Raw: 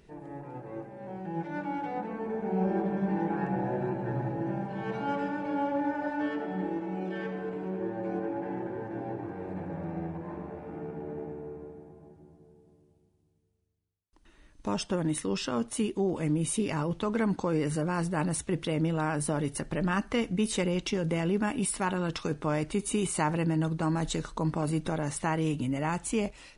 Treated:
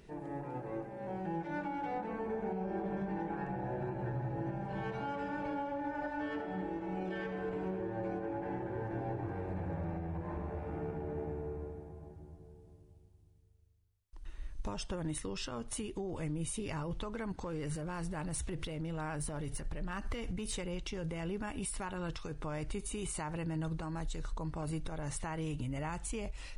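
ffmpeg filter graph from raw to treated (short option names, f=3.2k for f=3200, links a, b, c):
-filter_complex "[0:a]asettb=1/sr,asplit=3[a][b][c];[a]atrim=end=17.324[d];[b]atrim=start=17.32:end=20.54,asetpts=PTS-STARTPTS,afade=t=in:d=0.004:c=qsin,afade=t=out:st=3.216:d=0.004:c=qsin,acompressor=threshold=-35dB:ratio=4:attack=3.2:release=140:knee=1:detection=peak,asoftclip=type=hard:threshold=-30.5dB[e];[c]atrim=start=20.536[f];[d][e]acrossfade=d=0.004:c1=hsin:c2=qsin[g];[g][f]acrossfade=d=0.004:c1=qsin:c2=hsin,asubboost=boost=7.5:cutoff=75,acompressor=threshold=-33dB:ratio=6,alimiter=level_in=5.5dB:limit=-24dB:level=0:latency=1:release=335,volume=-5.5dB,volume=1dB"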